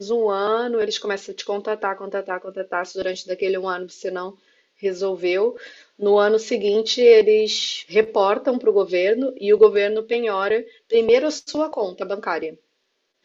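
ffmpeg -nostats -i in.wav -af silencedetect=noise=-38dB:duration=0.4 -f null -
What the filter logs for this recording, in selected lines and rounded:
silence_start: 4.32
silence_end: 4.83 | silence_duration: 0.51
silence_start: 12.54
silence_end: 13.25 | silence_duration: 0.70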